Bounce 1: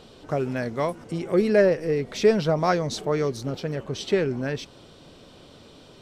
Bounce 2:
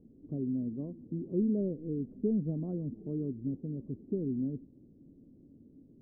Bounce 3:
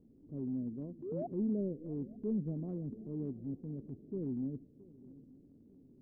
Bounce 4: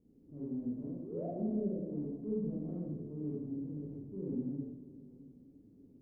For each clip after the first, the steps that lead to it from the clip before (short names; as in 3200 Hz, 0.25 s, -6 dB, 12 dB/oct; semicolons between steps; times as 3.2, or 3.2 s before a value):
ladder low-pass 310 Hz, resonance 55%
painted sound rise, 1.02–1.27, 330–740 Hz -35 dBFS; swung echo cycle 0.897 s, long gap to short 3:1, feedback 34%, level -21 dB; transient shaper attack -6 dB, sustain -1 dB; gain -3.5 dB
reverb RT60 1.1 s, pre-delay 28 ms, DRR -6 dB; gain -7.5 dB